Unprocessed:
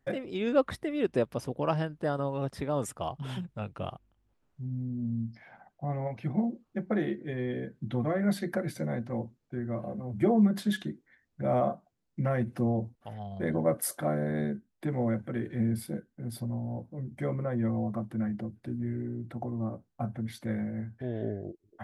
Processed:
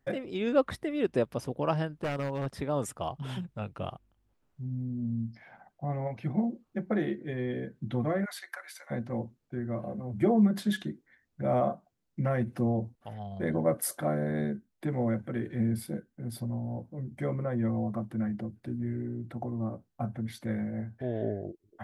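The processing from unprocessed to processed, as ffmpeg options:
ffmpeg -i in.wav -filter_complex "[0:a]asettb=1/sr,asplit=3[link_01][link_02][link_03];[link_01]atrim=end=1.954[link_04];[link_02]atrim=start=1.95:end=2.46,asetpts=PTS-STARTPTS,afade=type=in:duration=0.004:curve=qsin,afade=type=out:start_time=0.506:duration=0.004:curve=qsin,aeval=exprs='0.0501*(abs(mod(val(0)/0.0501+3,4)-2)-1)':channel_layout=same[link_05];[link_03]atrim=start=2.456[link_06];[link_04][link_05]acrossfade=duration=0.004:curve1=hsin:curve2=qsin[link_07];[link_07][link_06]acrossfade=duration=0.004:curve1=qsin:curve2=hsin,asplit=3[link_08][link_09][link_10];[link_08]afade=type=out:start_time=8.24:duration=0.02[link_11];[link_09]highpass=frequency=1000:width=0.5412,highpass=frequency=1000:width=1.3066,afade=type=in:start_time=8.24:duration=0.02,afade=type=out:start_time=8.9:duration=0.02[link_12];[link_10]afade=type=in:start_time=8.9:duration=0.02[link_13];[link_11][link_12][link_13]amix=inputs=3:normalize=0,asettb=1/sr,asplit=3[link_14][link_15][link_16];[link_14]atrim=end=20.724[link_17];[link_15]atrim=start=20.72:end=21.46,asetpts=PTS-STARTPTS,afade=type=in:duration=0.004:curve=qsin,afade=type=out:start_time=0.736:duration=0.004:curve=qsin,equalizer=frequency=650:width=1.5:gain=6[link_18];[link_16]atrim=start=21.456[link_19];[link_17][link_18]acrossfade=duration=0.004:curve1=hsin:curve2=qsin[link_20];[link_20][link_19]acrossfade=duration=0.004:curve1=qsin:curve2=hsin" out.wav

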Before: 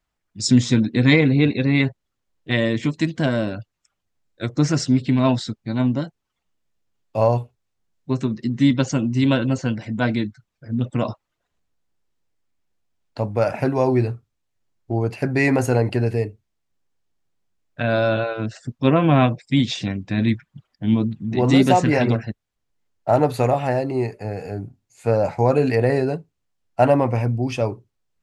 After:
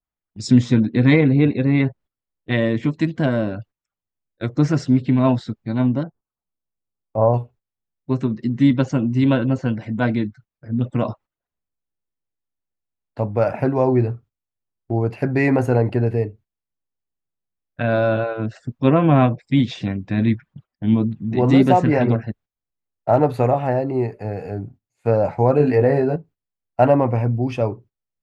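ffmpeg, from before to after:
ffmpeg -i in.wav -filter_complex "[0:a]asettb=1/sr,asplit=3[link_01][link_02][link_03];[link_01]atrim=end=6.034[link_04];[link_02]atrim=start=6.03:end=7.34,asetpts=PTS-STARTPTS,afade=type=in:duration=0.004:curve=qsin,afade=type=out:start_time=1.306:duration=0.004:curve=qsin,lowpass=frequency=1400:width=0.5412,lowpass=frequency=1400:width=1.3066[link_05];[link_03]atrim=start=7.336[link_06];[link_04][link_05]acrossfade=duration=0.004:curve1=hsin:curve2=qsin[link_07];[link_07][link_06]acrossfade=duration=0.004:curve1=qsin:curve2=hsin,asettb=1/sr,asplit=3[link_08][link_09][link_10];[link_08]atrim=end=25.584[link_11];[link_09]atrim=start=25.58:end=26.16,asetpts=PTS-STARTPTS,afade=type=in:duration=0.004:curve=qsin,afade=type=out:start_time=0.576:duration=0.004:curve=qsin,asplit=2[link_12][link_13];[link_13]adelay=20,volume=-5dB[link_14];[link_12][link_14]amix=inputs=2:normalize=0,atrim=end_sample=25578[link_15];[link_10]atrim=start=26.156[link_16];[link_11][link_15]acrossfade=duration=0.004:curve1=hsin:curve2=qsin[link_17];[link_17][link_16]acrossfade=duration=0.004:curve1=qsin:curve2=hsin,equalizer=frequency=7900:width_type=o:width=2.2:gain=-11,agate=range=-14dB:threshold=-44dB:ratio=16:detection=peak,adynamicequalizer=threshold=0.0158:dfrequency=1900:dqfactor=0.7:tfrequency=1900:tqfactor=0.7:attack=5:release=100:ratio=0.375:range=3:mode=cutabove:tftype=highshelf,volume=1.5dB" out.wav

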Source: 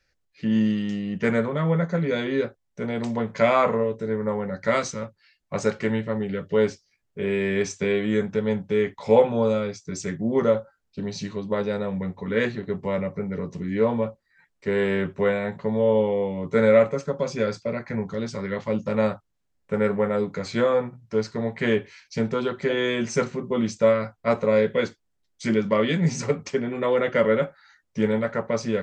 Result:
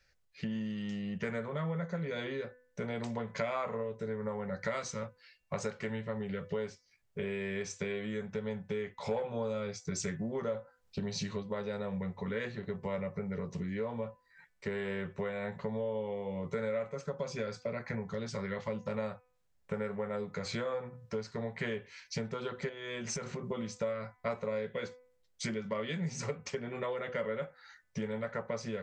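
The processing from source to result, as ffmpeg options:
ffmpeg -i in.wav -filter_complex "[0:a]asettb=1/sr,asplit=3[link_01][link_02][link_03];[link_01]atrim=end=9.114[link_04];[link_02]atrim=start=9.11:end=11.43,asetpts=PTS-STARTPTS,afade=type=in:duration=0.004:curve=qsin,afade=type=out:start_time=2.316:duration=0.004:curve=qsin,acontrast=45[link_05];[link_03]atrim=start=11.426[link_06];[link_04][link_05]acrossfade=duration=0.004:curve1=hsin:curve2=qsin[link_07];[link_07][link_06]acrossfade=duration=0.004:curve1=qsin:curve2=hsin,asettb=1/sr,asplit=3[link_08][link_09][link_10];[link_08]atrim=end=22.694[link_11];[link_09]atrim=start=22.69:end=23.46,asetpts=PTS-STARTPTS,afade=type=in:duration=0.004:curve=qsin,afade=type=out:start_time=0.766:duration=0.004:curve=qsin,acompressor=threshold=-31dB:ratio=12:attack=3.2:release=140:knee=1:detection=peak[link_12];[link_10]atrim=start=23.456[link_13];[link_11][link_12]acrossfade=duration=0.004:curve1=hsin:curve2=qsin[link_14];[link_14][link_13]acrossfade=duration=0.004:curve1=qsin:curve2=hsin,acompressor=threshold=-32dB:ratio=6,equalizer=frequency=290:width_type=o:width=0.58:gain=-9.5,bandreject=frequency=250.2:width_type=h:width=4,bandreject=frequency=500.4:width_type=h:width=4,bandreject=frequency=750.6:width_type=h:width=4,bandreject=frequency=1000.8:width_type=h:width=4,bandreject=frequency=1251:width_type=h:width=4,bandreject=frequency=1501.2:width_type=h:width=4,bandreject=frequency=1751.4:width_type=h:width=4,bandreject=frequency=2001.6:width_type=h:width=4,bandreject=frequency=2251.8:width_type=h:width=4,bandreject=frequency=2502:width_type=h:width=4,bandreject=frequency=2752.2:width_type=h:width=4" out.wav

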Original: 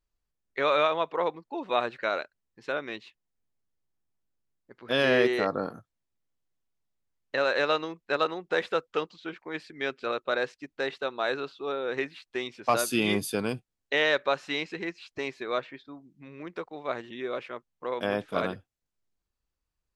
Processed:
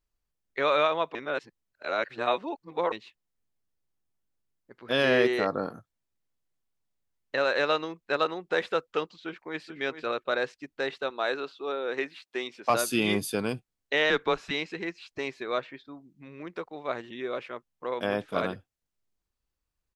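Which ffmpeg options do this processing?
ffmpeg -i in.wav -filter_complex "[0:a]asplit=2[link_01][link_02];[link_02]afade=type=in:start_time=9.16:duration=0.01,afade=type=out:start_time=9.59:duration=0.01,aecho=0:1:430|860:0.298538|0.0298538[link_03];[link_01][link_03]amix=inputs=2:normalize=0,asettb=1/sr,asplit=3[link_04][link_05][link_06];[link_04]atrim=end=11.104[link_07];[link_05]atrim=start=11.1:end=12.7,asetpts=PTS-STARTPTS,afade=type=in:duration=0.004:curve=qsin,afade=type=out:start_time=1.596:duration=0.004:curve=qsin,highpass=230[link_08];[link_06]atrim=start=12.696[link_09];[link_07][link_08]acrossfade=duration=0.004:curve1=hsin:curve2=qsin[link_10];[link_10][link_09]acrossfade=duration=0.004:curve1=qsin:curve2=hsin,asettb=1/sr,asplit=3[link_11][link_12][link_13];[link_11]atrim=end=14.104[link_14];[link_12]atrim=start=14.1:end=14.51,asetpts=PTS-STARTPTS,afade=type=in:duration=0.004:curve=qsin,afade=type=out:start_time=0.406:duration=0.004:curve=qsin,afreqshift=-120[link_15];[link_13]atrim=start=14.506[link_16];[link_14][link_15]acrossfade=duration=0.004:curve1=hsin:curve2=qsin[link_17];[link_17][link_16]acrossfade=duration=0.004:curve1=qsin:curve2=hsin,asplit=3[link_18][link_19][link_20];[link_18]atrim=end=1.152[link_21];[link_19]atrim=start=1.148:end=2.922,asetpts=PTS-STARTPTS,areverse[link_22];[link_20]atrim=start=2.918[link_23];[link_21][link_22]acrossfade=duration=0.004:curve1=hsin:curve2=hsin[link_24];[link_24][link_23]acrossfade=duration=0.004:curve1=hsin:curve2=hsin" out.wav

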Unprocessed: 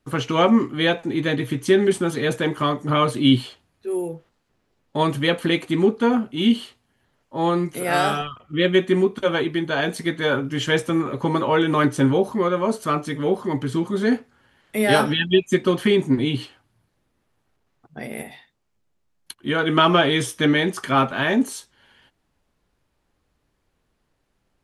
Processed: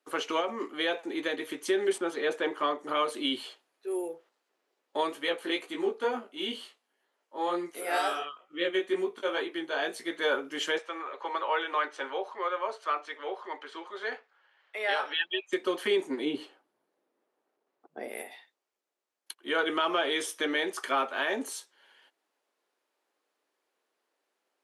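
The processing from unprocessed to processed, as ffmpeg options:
ffmpeg -i in.wav -filter_complex "[0:a]asettb=1/sr,asplit=3[link_01][link_02][link_03];[link_01]atrim=end=0.404[link_04];[link_02]atrim=start=0.4:end=1.08,asetpts=PTS-STARTPTS,afade=type=in:duration=0.004:curve=qsin,afade=type=out:start_time=0.676:duration=0.004:curve=qsin,acompressor=threshold=-17dB:ratio=6:attack=3.2:release=140:knee=1:detection=peak[link_05];[link_03]atrim=start=1.076[link_06];[link_04][link_05]acrossfade=duration=0.004:curve1=hsin:curve2=qsin[link_07];[link_07][link_06]acrossfade=duration=0.004:curve1=qsin:curve2=hsin,asettb=1/sr,asplit=3[link_08][link_09][link_10];[link_08]atrim=end=1.984[link_11];[link_09]atrim=start=1.98:end=2.84,asetpts=PTS-STARTPTS,afade=type=in:duration=0.004:curve=qsin,afade=type=out:start_time=0.856:duration=0.004:curve=qsin,aemphasis=mode=reproduction:type=50kf[link_12];[link_10]atrim=start=2.836[link_13];[link_11][link_12]acrossfade=duration=0.004:curve1=hsin:curve2=qsin[link_14];[link_14][link_13]acrossfade=duration=0.004:curve1=qsin:curve2=hsin,asplit=3[link_15][link_16][link_17];[link_15]afade=type=out:start_time=5.09:duration=0.02[link_18];[link_16]flanger=delay=16.5:depth=4.5:speed=2.1,afade=type=in:start_time=5.09:duration=0.02,afade=type=out:start_time=10.1:duration=0.02[link_19];[link_17]afade=type=in:start_time=10.1:duration=0.02[link_20];[link_18][link_19][link_20]amix=inputs=3:normalize=0,asettb=1/sr,asplit=3[link_21][link_22][link_23];[link_21]atrim=end=10.784[link_24];[link_22]atrim=start=10.78:end=15.53,asetpts=PTS-STARTPTS,afade=type=in:duration=0.004:curve=qsin,afade=type=out:start_time=4.746:duration=0.004:curve=qsin,highpass=710,lowpass=3600[link_25];[link_23]atrim=start=15.526[link_26];[link_24][link_25]acrossfade=duration=0.004:curve1=hsin:curve2=qsin[link_27];[link_27][link_26]acrossfade=duration=0.004:curve1=qsin:curve2=hsin,asettb=1/sr,asplit=3[link_28][link_29][link_30];[link_28]atrim=end=16.254[link_31];[link_29]atrim=start=16.25:end=18.08,asetpts=PTS-STARTPTS,afade=type=in:duration=0.004:curve=qsin,afade=type=out:start_time=1.826:duration=0.004:curve=qsin,tiltshelf=frequency=970:gain=7.5[link_32];[link_30]atrim=start=18.076[link_33];[link_31][link_32]acrossfade=duration=0.004:curve1=hsin:curve2=qsin[link_34];[link_34][link_33]acrossfade=duration=0.004:curve1=qsin:curve2=hsin,highpass=frequency=360:width=0.5412,highpass=frequency=360:width=1.3066,alimiter=limit=-12.5dB:level=0:latency=1:release=207,volume=-5dB" out.wav

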